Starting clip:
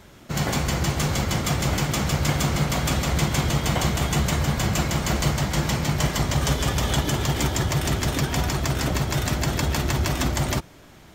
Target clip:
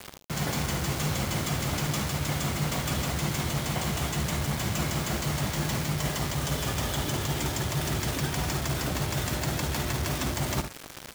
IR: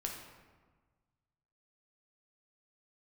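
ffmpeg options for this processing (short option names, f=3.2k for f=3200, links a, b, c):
-af "highpass=57,areverse,acompressor=threshold=-33dB:ratio=20,areverse,acrusher=bits=6:mix=0:aa=0.000001,aecho=1:1:53|73:0.224|0.237,volume=7dB"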